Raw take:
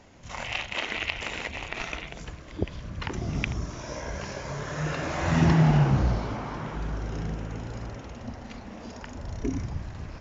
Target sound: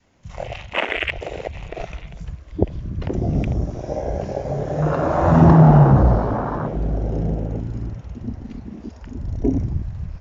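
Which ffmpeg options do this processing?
-af "adynamicequalizer=threshold=0.00631:dfrequency=610:dqfactor=1.2:tfrequency=610:tqfactor=1.2:attack=5:release=100:ratio=0.375:range=2.5:mode=boostabove:tftype=bell,acontrast=70,afwtdn=0.0794,volume=1.41"

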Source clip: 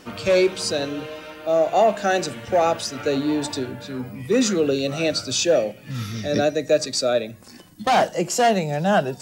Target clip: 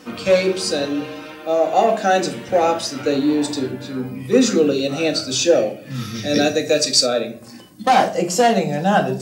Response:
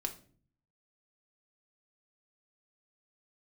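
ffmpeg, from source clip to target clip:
-filter_complex "[0:a]highpass=83[s0];[1:a]atrim=start_sample=2205[s1];[s0][s1]afir=irnorm=-1:irlink=0,asplit=3[s2][s3][s4];[s2]afade=t=out:st=6.14:d=0.02[s5];[s3]adynamicequalizer=threshold=0.0112:dfrequency=1900:dqfactor=0.7:tfrequency=1900:tqfactor=0.7:attack=5:release=100:ratio=0.375:range=3.5:mode=boostabove:tftype=highshelf,afade=t=in:st=6.14:d=0.02,afade=t=out:st=7.05:d=0.02[s6];[s4]afade=t=in:st=7.05:d=0.02[s7];[s5][s6][s7]amix=inputs=3:normalize=0,volume=1.26"

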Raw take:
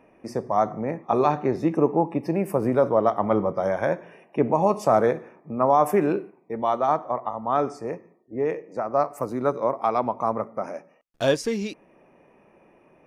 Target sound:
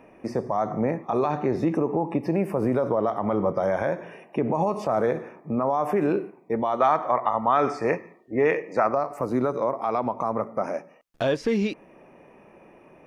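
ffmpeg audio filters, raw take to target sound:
-filter_complex "[0:a]alimiter=limit=0.106:level=0:latency=1:release=99,acrossover=split=3900[s0][s1];[s1]acompressor=threshold=0.00126:ratio=4:attack=1:release=60[s2];[s0][s2]amix=inputs=2:normalize=0,asettb=1/sr,asplit=3[s3][s4][s5];[s3]atrim=end=6.804[s6];[s4]atrim=start=6.8:end=8.95,asetpts=PTS-STARTPTS,afade=t=in:d=0.004:c=qsin,afade=t=out:st=2.146:d=0.004:c=qsin,equalizer=f=2200:t=o:w=2.3:g=11[s7];[s5]atrim=start=8.946[s8];[s6][s7]acrossfade=d=0.004:c1=hsin:c2=qsin[s9];[s9][s8]acrossfade=d=0.004:c1=qsin:c2=hsin,volume=1.78"

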